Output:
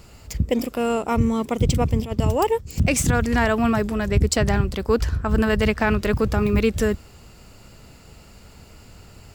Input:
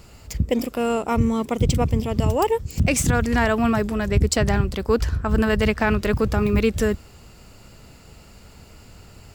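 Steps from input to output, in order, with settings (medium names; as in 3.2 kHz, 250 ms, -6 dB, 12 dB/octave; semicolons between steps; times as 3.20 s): 2.05–2.67 s: gate -23 dBFS, range -8 dB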